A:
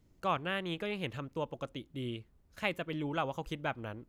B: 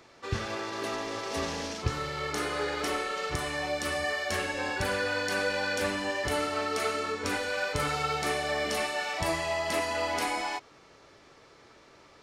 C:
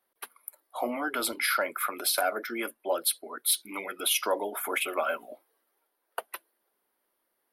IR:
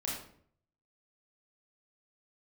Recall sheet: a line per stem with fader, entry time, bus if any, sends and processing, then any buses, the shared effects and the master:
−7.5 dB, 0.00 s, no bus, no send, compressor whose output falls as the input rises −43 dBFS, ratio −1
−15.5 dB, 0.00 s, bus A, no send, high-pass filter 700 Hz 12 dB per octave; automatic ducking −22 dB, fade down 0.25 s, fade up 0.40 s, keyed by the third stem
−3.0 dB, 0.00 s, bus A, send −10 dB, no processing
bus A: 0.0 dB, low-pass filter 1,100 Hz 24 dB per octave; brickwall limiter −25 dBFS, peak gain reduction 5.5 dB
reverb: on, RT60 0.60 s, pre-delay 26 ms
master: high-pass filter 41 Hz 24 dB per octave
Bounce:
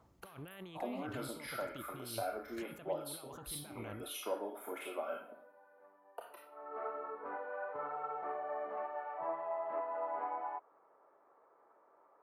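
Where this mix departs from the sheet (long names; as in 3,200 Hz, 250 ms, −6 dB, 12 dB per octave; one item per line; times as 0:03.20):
stem B −15.5 dB → −3.5 dB
stem C −3.0 dB → −10.0 dB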